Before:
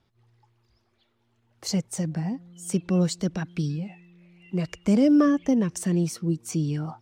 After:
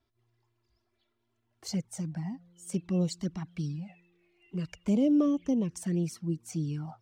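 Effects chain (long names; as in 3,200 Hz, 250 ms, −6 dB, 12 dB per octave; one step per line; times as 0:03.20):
flanger swept by the level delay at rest 3 ms, full sweep at −18.5 dBFS
level −5.5 dB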